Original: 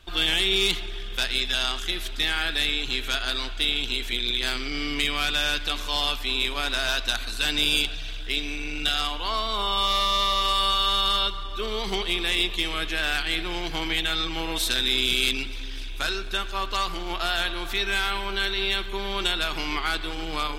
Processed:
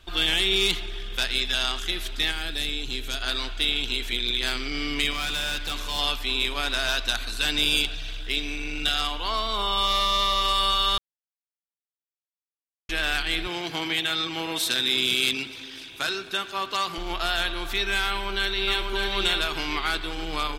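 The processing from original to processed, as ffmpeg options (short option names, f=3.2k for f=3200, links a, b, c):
-filter_complex "[0:a]asettb=1/sr,asplit=3[a][b][c];[a]atrim=end=2.314[d];[b]atrim=start=2.31:end=3.22,asetpts=PTS-STARTPTS,afade=t=in:d=0.004:c=qsin,afade=t=out:st=0.906:d=0.004:c=qsin,equalizer=f=1.5k:t=o:w=2.5:g=-8[e];[c]atrim=start=3.216[f];[d][e]acrossfade=d=0.004:c1=hsin:c2=qsin[g];[g][f]acrossfade=d=0.004:c1=qsin:c2=hsin,asettb=1/sr,asplit=3[h][i][j];[h]atrim=end=5.114[k];[i]atrim=start=5.11:end=5.99,asetpts=PTS-STARTPTS,afade=t=in:d=0.004:c=qsin,afade=t=out:st=0.876:d=0.004:c=qsin,asoftclip=type=hard:threshold=-24.5dB[l];[j]atrim=start=5.986[m];[k][l]acrossfade=d=0.004:c1=hsin:c2=qsin[n];[n][m]acrossfade=d=0.004:c1=qsin:c2=hsin,asettb=1/sr,asplit=3[o][p][q];[o]atrim=end=13.474[r];[p]atrim=start=13.47:end=16.98,asetpts=PTS-STARTPTS,afade=t=in:d=0.004:c=qsin,afade=t=out:st=3.506:d=0.004:c=qsin,highpass=f=91:w=0.5412,highpass=f=91:w=1.3066[s];[q]atrim=start=16.976[t];[r][s]acrossfade=d=0.004:c1=hsin:c2=qsin[u];[u][t]acrossfade=d=0.004:c1=qsin:c2=hsin,asplit=2[v][w];[w]afade=t=in:st=18.08:d=0.01,afade=t=out:st=18.93:d=0.01,aecho=0:1:590|1180|1770|2360:0.707946|0.212384|0.0637151|0.0191145[x];[v][x]amix=inputs=2:normalize=0,asplit=3[y][z][aa];[y]atrim=end=10.98,asetpts=PTS-STARTPTS,afade=t=out:st=10.976:d=0.004:c=hsin[ab];[z]atrim=start=10.98:end=12.89,asetpts=PTS-STARTPTS,volume=0[ac];[aa]atrim=start=12.89,asetpts=PTS-STARTPTS,afade=t=in:d=0.004:c=hsin[ad];[ab][ac][ad]concat=n=3:v=0:a=1"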